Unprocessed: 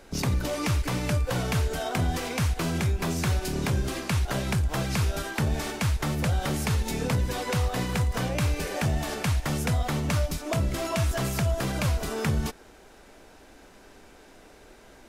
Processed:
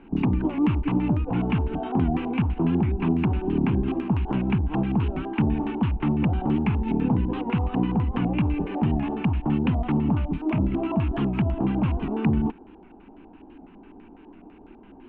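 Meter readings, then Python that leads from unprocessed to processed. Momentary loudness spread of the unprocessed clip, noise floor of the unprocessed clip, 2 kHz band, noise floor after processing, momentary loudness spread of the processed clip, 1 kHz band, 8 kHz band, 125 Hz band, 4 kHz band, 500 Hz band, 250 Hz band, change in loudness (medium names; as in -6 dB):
1 LU, -52 dBFS, -5.5 dB, -49 dBFS, 2 LU, +1.0 dB, under -40 dB, +1.5 dB, -10.0 dB, 0.0 dB, +9.0 dB, +3.0 dB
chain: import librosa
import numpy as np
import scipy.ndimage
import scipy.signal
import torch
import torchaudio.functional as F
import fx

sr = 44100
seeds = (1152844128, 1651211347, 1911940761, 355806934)

y = fx.curve_eq(x, sr, hz=(130.0, 200.0, 310.0, 580.0, 880.0, 2000.0, 2800.0, 5300.0, 8100.0, 14000.0), db=(0, 9, 11, -13, 2, -14, 0, -26, -17, -11))
y = fx.filter_lfo_lowpass(y, sr, shape='square', hz=6.0, low_hz=740.0, high_hz=2200.0, q=2.4)
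y = fx.record_warp(y, sr, rpm=78.0, depth_cents=100.0)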